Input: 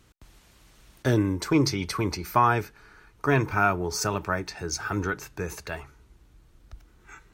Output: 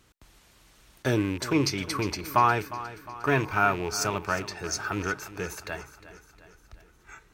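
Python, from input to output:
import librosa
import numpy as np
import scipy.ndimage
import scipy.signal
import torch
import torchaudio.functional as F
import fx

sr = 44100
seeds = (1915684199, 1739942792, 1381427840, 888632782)

p1 = fx.rattle_buzz(x, sr, strikes_db=-31.0, level_db=-28.0)
p2 = fx.low_shelf(p1, sr, hz=290.0, db=-5.0)
y = p2 + fx.echo_feedback(p2, sr, ms=357, feedback_pct=54, wet_db=-15.0, dry=0)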